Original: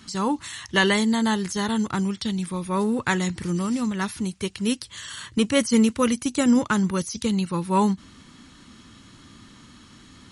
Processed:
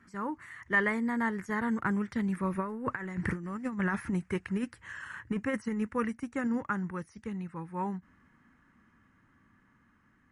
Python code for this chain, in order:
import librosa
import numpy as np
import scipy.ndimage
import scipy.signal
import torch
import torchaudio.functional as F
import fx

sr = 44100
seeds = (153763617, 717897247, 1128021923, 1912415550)

y = fx.doppler_pass(x, sr, speed_mps=15, closest_m=9.1, pass_at_s=3.32)
y = fx.over_compress(y, sr, threshold_db=-30.0, ratio=-0.5)
y = fx.high_shelf_res(y, sr, hz=2600.0, db=-13.0, q=3.0)